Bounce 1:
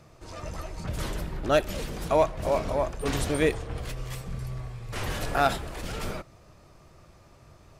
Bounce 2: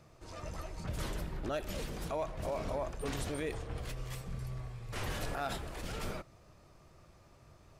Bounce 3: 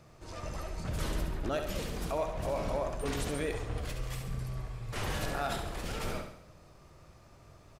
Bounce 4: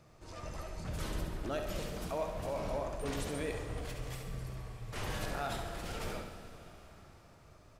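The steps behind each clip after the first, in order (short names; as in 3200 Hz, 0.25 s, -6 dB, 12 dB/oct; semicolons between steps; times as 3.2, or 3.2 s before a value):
limiter -21.5 dBFS, peak gain reduction 10 dB; gain -6 dB
feedback echo 69 ms, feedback 49%, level -7 dB; gain +2.5 dB
plate-style reverb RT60 4.6 s, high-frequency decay 0.9×, DRR 8 dB; gain -4 dB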